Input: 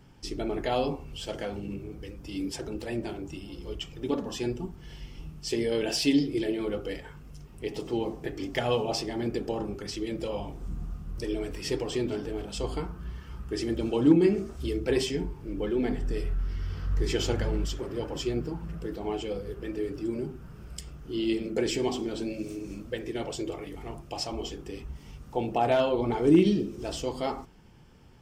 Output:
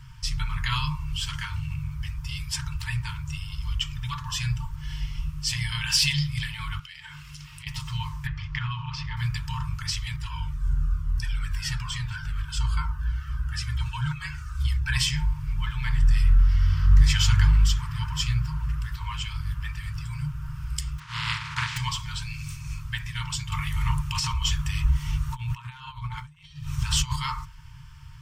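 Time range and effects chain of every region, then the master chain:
0:06.79–0:07.67: meter weighting curve D + downward compressor 10 to 1, threshold −46 dBFS + notch filter 6,200 Hz, Q 24
0:08.27–0:09.17: downward compressor, threshold −29 dBFS + high-frequency loss of the air 230 metres
0:10.16–0:14.94: parametric band 1,500 Hz +10 dB 0.28 octaves + flanger whose copies keep moving one way falling 1.1 Hz
0:20.98–0:21.76: compressing power law on the bin magnitudes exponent 0.25 + high-pass filter 97 Hz + head-to-tape spacing loss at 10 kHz 31 dB
0:23.52–0:27.16: compressor whose output falls as the input rises −36 dBFS + notch filter 5,000 Hz
whole clip: brick-wall band-stop 160–890 Hz; low-shelf EQ 320 Hz +4 dB; level +8.5 dB

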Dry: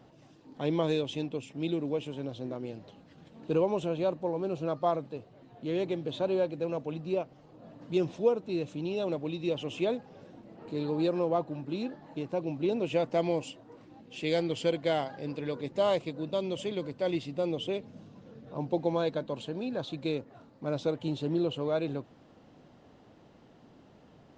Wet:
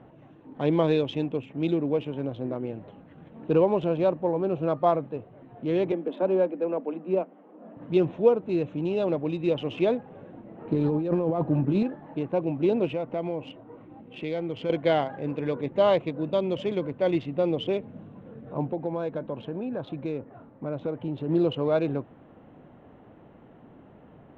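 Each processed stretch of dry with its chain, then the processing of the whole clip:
0:05.92–0:07.77: Butterworth high-pass 180 Hz 96 dB per octave + high-frequency loss of the air 280 metres
0:10.71–0:11.83: low-shelf EQ 300 Hz +8.5 dB + compressor whose output falls as the input rises −30 dBFS
0:12.90–0:14.70: notch filter 1,700 Hz, Q 9.5 + downward compressor 2 to 1, threshold −37 dBFS + high-frequency loss of the air 77 metres
0:18.71–0:21.29: high-shelf EQ 5,000 Hz −11.5 dB + downward compressor 2 to 1, threshold −36 dBFS
whole clip: adaptive Wiener filter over 9 samples; low-pass filter 3,200 Hz 12 dB per octave; level +6 dB

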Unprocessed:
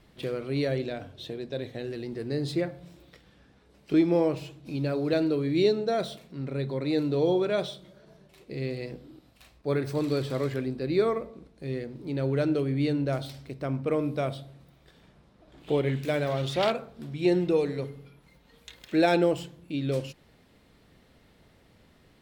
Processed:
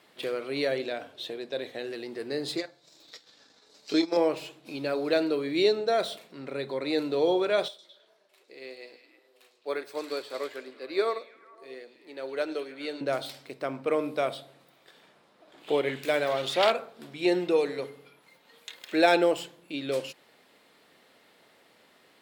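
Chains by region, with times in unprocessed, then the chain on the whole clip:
0:02.57–0:04.17: flat-topped bell 5,300 Hz +13.5 dB 1.2 octaves + notch comb filter 180 Hz + transient designer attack +1 dB, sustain −11 dB
0:07.68–0:13.01: high-pass filter 340 Hz + echo through a band-pass that steps 105 ms, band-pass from 5,500 Hz, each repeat −0.7 octaves, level −5 dB + expander for the loud parts, over −39 dBFS
whole clip: Bessel high-pass filter 520 Hz, order 2; parametric band 5,800 Hz −3 dB 0.25 octaves; level +4.5 dB

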